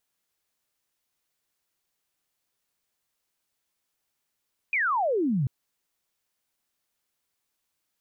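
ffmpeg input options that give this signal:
ffmpeg -f lavfi -i "aevalsrc='0.0794*clip(t/0.002,0,1)*clip((0.74-t)/0.002,0,1)*sin(2*PI*2500*0.74/log(120/2500)*(exp(log(120/2500)*t/0.74)-1))':duration=0.74:sample_rate=44100" out.wav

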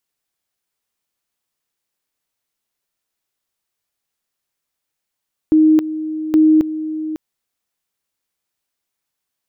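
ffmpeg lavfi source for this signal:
ffmpeg -f lavfi -i "aevalsrc='pow(10,(-7.5-13*gte(mod(t,0.82),0.27))/20)*sin(2*PI*312*t)':duration=1.64:sample_rate=44100" out.wav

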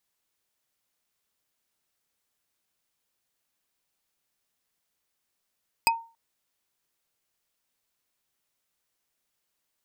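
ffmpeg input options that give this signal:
ffmpeg -f lavfi -i "aevalsrc='0.15*pow(10,-3*t/0.34)*sin(2*PI*917*t)+0.141*pow(10,-3*t/0.101)*sin(2*PI*2528.2*t)+0.133*pow(10,-3*t/0.045)*sin(2*PI*4955.5*t)+0.126*pow(10,-3*t/0.025)*sin(2*PI*8191.6*t)+0.119*pow(10,-3*t/0.015)*sin(2*PI*12232.8*t)':duration=0.28:sample_rate=44100" out.wav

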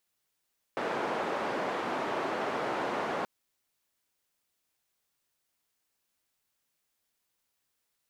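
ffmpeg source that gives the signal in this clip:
ffmpeg -f lavfi -i "anoisesrc=color=white:duration=2.48:sample_rate=44100:seed=1,highpass=frequency=280,lowpass=frequency=960,volume=-13.1dB" out.wav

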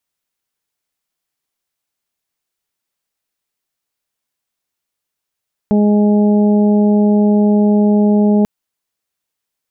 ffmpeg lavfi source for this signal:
ffmpeg -f lavfi -i "aevalsrc='0.355*sin(2*PI*208*t)+0.141*sin(2*PI*416*t)+0.0794*sin(2*PI*624*t)+0.0473*sin(2*PI*832*t)':duration=2.74:sample_rate=44100" out.wav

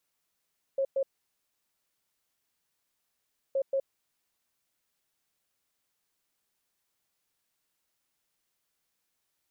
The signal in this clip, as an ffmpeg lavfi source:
ffmpeg -f lavfi -i "aevalsrc='0.0596*sin(2*PI*542*t)*clip(min(mod(mod(t,2.77),0.18),0.07-mod(mod(t,2.77),0.18))/0.005,0,1)*lt(mod(t,2.77),0.36)':duration=5.54:sample_rate=44100" out.wav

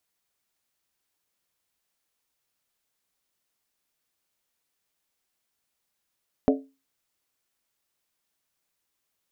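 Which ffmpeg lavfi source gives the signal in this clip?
ffmpeg -f lavfi -i "aevalsrc='0.178*pow(10,-3*t/0.29)*sin(2*PI*271*t)+0.126*pow(10,-3*t/0.23)*sin(2*PI*432*t)+0.0891*pow(10,-3*t/0.198)*sin(2*PI*578.9*t)+0.0631*pow(10,-3*t/0.191)*sin(2*PI*622.2*t)+0.0447*pow(10,-3*t/0.178)*sin(2*PI*719*t)':duration=0.63:sample_rate=44100" out.wav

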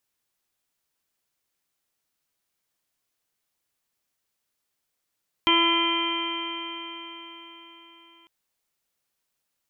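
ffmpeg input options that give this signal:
ffmpeg -f lavfi -i "aevalsrc='0.0668*pow(10,-3*t/4.49)*sin(2*PI*334.18*t)+0.0119*pow(10,-3*t/4.49)*sin(2*PI*669.47*t)+0.0841*pow(10,-3*t/4.49)*sin(2*PI*1006.95*t)+0.0299*pow(10,-3*t/4.49)*sin(2*PI*1347.71*t)+0.00944*pow(10,-3*t/4.49)*sin(2*PI*1692.81*t)+0.0335*pow(10,-3*t/4.49)*sin(2*PI*2043.29*t)+0.0501*pow(10,-3*t/4.49)*sin(2*PI*2400.18*t)+0.015*pow(10,-3*t/4.49)*sin(2*PI*2764.45*t)+0.106*pow(10,-3*t/4.49)*sin(2*PI*3137.06*t)':duration=2.8:sample_rate=44100" out.wav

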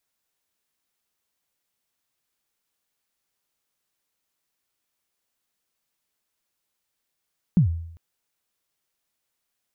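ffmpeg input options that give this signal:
ffmpeg -f lavfi -i "aevalsrc='0.282*pow(10,-3*t/0.72)*sin(2*PI*(200*0.109/log(83/200)*(exp(log(83/200)*min(t,0.109)/0.109)-1)+83*max(t-0.109,0)))':duration=0.4:sample_rate=44100" out.wav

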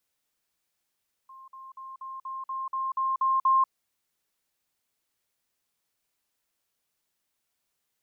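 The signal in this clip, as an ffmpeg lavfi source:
ffmpeg -f lavfi -i "aevalsrc='pow(10,(-45+3*floor(t/0.24))/20)*sin(2*PI*1060*t)*clip(min(mod(t,0.24),0.19-mod(t,0.24))/0.005,0,1)':duration=2.4:sample_rate=44100" out.wav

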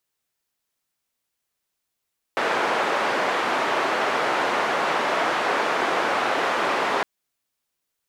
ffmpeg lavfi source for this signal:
ffmpeg -f lavfi -i "anoisesrc=color=white:duration=4.66:sample_rate=44100:seed=1,highpass=frequency=390,lowpass=frequency=1300,volume=-4.8dB" out.wav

